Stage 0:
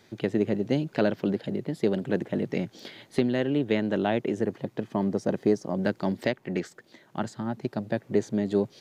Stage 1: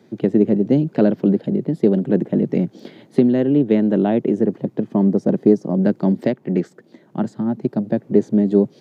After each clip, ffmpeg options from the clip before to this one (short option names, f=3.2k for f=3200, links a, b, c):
-af "highpass=f=150:w=0.5412,highpass=f=150:w=1.3066,tiltshelf=f=680:g=9.5,volume=4.5dB"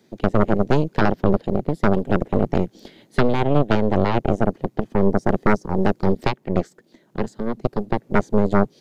-af "aeval=exprs='0.891*(cos(1*acos(clip(val(0)/0.891,-1,1)))-cos(1*PI/2))+0.398*(cos(6*acos(clip(val(0)/0.891,-1,1)))-cos(6*PI/2))':c=same,highshelf=f=2.9k:g=11,volume=-7dB"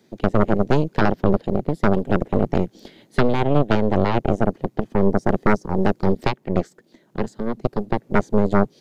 -af anull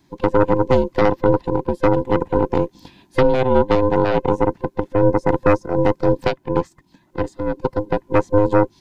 -af "afftfilt=real='real(if(between(b,1,1008),(2*floor((b-1)/24)+1)*24-b,b),0)':imag='imag(if(between(b,1,1008),(2*floor((b-1)/24)+1)*24-b,b),0)*if(between(b,1,1008),-1,1)':win_size=2048:overlap=0.75"